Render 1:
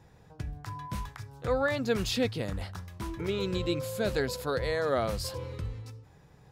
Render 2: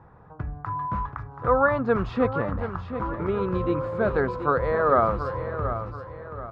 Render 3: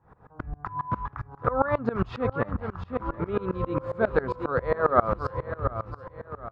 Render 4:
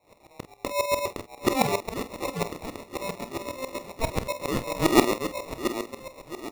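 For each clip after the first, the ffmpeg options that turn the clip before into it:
-af "lowpass=f=1200:t=q:w=3.4,aecho=1:1:730|1460|2190|2920:0.316|0.126|0.0506|0.0202,volume=1.68"
-af "aeval=exprs='val(0)*pow(10,-24*if(lt(mod(-7.4*n/s,1),2*abs(-7.4)/1000),1-mod(-7.4*n/s,1)/(2*abs(-7.4)/1000),(mod(-7.4*n/s,1)-2*abs(-7.4)/1000)/(1-2*abs(-7.4)/1000))/20)':c=same,volume=1.78"
-af "highpass=f=970:t=q:w=1.7,acrusher=samples=28:mix=1:aa=0.000001,aecho=1:1:30|47:0.2|0.251"

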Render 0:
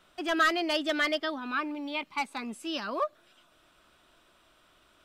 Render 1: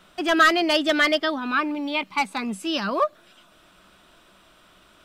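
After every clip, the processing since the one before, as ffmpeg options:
-af "equalizer=f=190:w=7.5:g=11.5,volume=2.51"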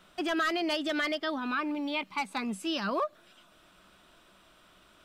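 -af "alimiter=limit=0.15:level=0:latency=1:release=113,volume=0.562"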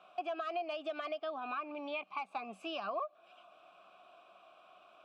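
-filter_complex "[0:a]asplit=3[s0][s1][s2];[s0]bandpass=f=730:t=q:w=8,volume=1[s3];[s1]bandpass=f=1090:t=q:w=8,volume=0.501[s4];[s2]bandpass=f=2440:t=q:w=8,volume=0.355[s5];[s3][s4][s5]amix=inputs=3:normalize=0,acompressor=threshold=0.00355:ratio=3,volume=3.55"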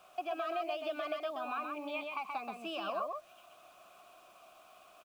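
-filter_complex "[0:a]acrusher=bits=10:mix=0:aa=0.000001,asplit=2[s0][s1];[s1]aecho=0:1:128:0.631[s2];[s0][s2]amix=inputs=2:normalize=0"

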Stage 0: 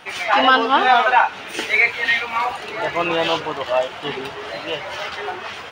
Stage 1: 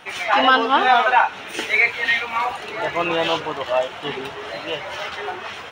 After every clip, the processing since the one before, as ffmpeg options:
-af "bandreject=f=4700:w=11,volume=0.891"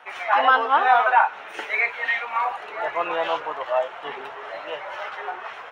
-filter_complex "[0:a]acrossover=split=500 2000:gain=0.112 1 0.178[s0][s1][s2];[s0][s1][s2]amix=inputs=3:normalize=0"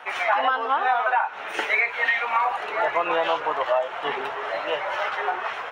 -af "acompressor=threshold=0.0631:ratio=12,volume=2"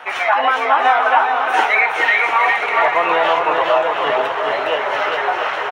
-af "aecho=1:1:410|697|897.9|1039|1137:0.631|0.398|0.251|0.158|0.1,volume=2"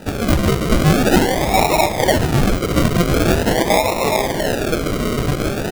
-af "acrusher=samples=40:mix=1:aa=0.000001:lfo=1:lforange=24:lforate=0.44"

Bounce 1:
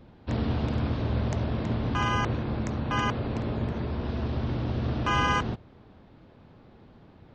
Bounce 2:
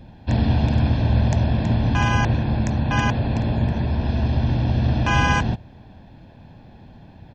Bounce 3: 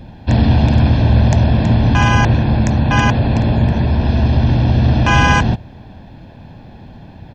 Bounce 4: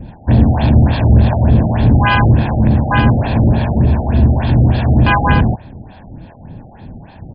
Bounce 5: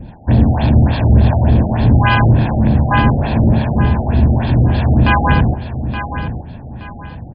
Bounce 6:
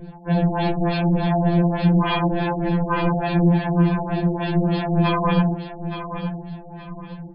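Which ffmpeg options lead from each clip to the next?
-af "equalizer=f=1200:t=o:w=0.61:g=-7.5,aecho=1:1:1.2:0.53,volume=2.24"
-af "acontrast=61,volume=1.19"
-filter_complex "[0:a]acrossover=split=580[s0][s1];[s0]aeval=exprs='val(0)*(1-0.7/2+0.7/2*cos(2*PI*2.6*n/s))':c=same[s2];[s1]aeval=exprs='val(0)*(1-0.7/2-0.7/2*cos(2*PI*2.6*n/s))':c=same[s3];[s2][s3]amix=inputs=2:normalize=0,acontrast=45,afftfilt=real='re*lt(b*sr/1024,790*pow(5100/790,0.5+0.5*sin(2*PI*3.4*pts/sr)))':imag='im*lt(b*sr/1024,790*pow(5100/790,0.5+0.5*sin(2*PI*3.4*pts/sr)))':win_size=1024:overlap=0.75"
-af "aecho=1:1:872|1744|2616:0.316|0.098|0.0304,volume=0.891"
-af "afftfilt=real='re*2.83*eq(mod(b,8),0)':imag='im*2.83*eq(mod(b,8),0)':win_size=2048:overlap=0.75"

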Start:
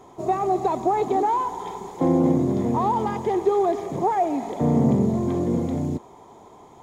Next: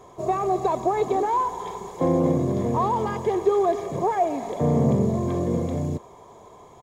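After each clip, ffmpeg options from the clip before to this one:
-af "aecho=1:1:1.8:0.43"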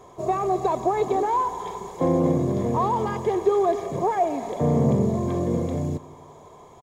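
-filter_complex "[0:a]asplit=2[s0][s1];[s1]adelay=168,lowpass=f=2000:p=1,volume=0.0891,asplit=2[s2][s3];[s3]adelay=168,lowpass=f=2000:p=1,volume=0.54,asplit=2[s4][s5];[s5]adelay=168,lowpass=f=2000:p=1,volume=0.54,asplit=2[s6][s7];[s7]adelay=168,lowpass=f=2000:p=1,volume=0.54[s8];[s0][s2][s4][s6][s8]amix=inputs=5:normalize=0"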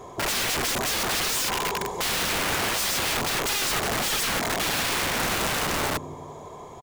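-af "aeval=exprs='(mod(22.4*val(0)+1,2)-1)/22.4':c=same,volume=2"

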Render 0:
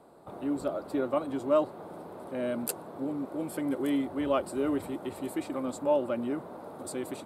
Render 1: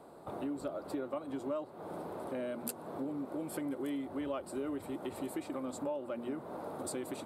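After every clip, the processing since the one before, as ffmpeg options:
-af "bandreject=f=60:t=h:w=6,bandreject=f=120:t=h:w=6,bandreject=f=180:t=h:w=6,bandreject=f=240:t=h:w=6,acompressor=threshold=0.0126:ratio=5,volume=1.26"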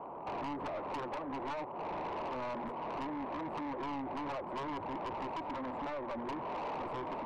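-af "aeval=exprs='0.106*(cos(1*acos(clip(val(0)/0.106,-1,1)))-cos(1*PI/2))+0.0075*(cos(6*acos(clip(val(0)/0.106,-1,1)))-cos(6*PI/2))+0.0335*(cos(7*acos(clip(val(0)/0.106,-1,1)))-cos(7*PI/2))':c=same,lowpass=f=990:t=q:w=4.9,asoftclip=type=tanh:threshold=0.0119,volume=1.41"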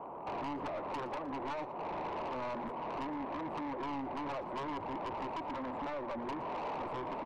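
-af "aecho=1:1:116:0.15"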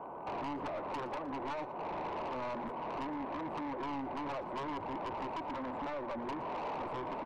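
-af "aeval=exprs='val(0)+0.000562*sin(2*PI*1500*n/s)':c=same"

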